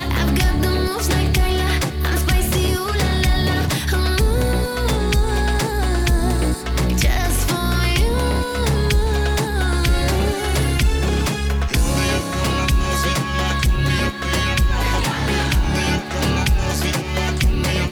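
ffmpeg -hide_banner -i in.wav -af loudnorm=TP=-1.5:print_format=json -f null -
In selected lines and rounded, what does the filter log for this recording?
"input_i" : "-19.3",
"input_tp" : "-6.9",
"input_lra" : "0.7",
"input_thresh" : "-29.3",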